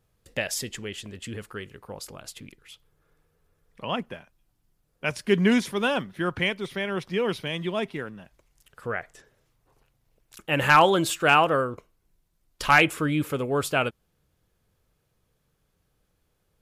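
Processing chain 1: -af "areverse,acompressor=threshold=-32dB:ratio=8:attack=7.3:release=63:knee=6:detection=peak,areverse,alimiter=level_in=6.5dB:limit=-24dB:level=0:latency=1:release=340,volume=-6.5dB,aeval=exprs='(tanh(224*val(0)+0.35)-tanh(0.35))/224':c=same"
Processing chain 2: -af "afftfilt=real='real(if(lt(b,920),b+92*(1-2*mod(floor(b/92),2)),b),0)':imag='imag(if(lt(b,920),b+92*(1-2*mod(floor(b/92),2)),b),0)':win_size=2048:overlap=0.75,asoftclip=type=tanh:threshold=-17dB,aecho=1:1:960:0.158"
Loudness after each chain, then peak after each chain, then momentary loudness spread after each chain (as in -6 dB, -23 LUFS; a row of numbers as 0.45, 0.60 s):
-50.5, -25.5 LUFS; -44.5, -16.0 dBFS; 11, 20 LU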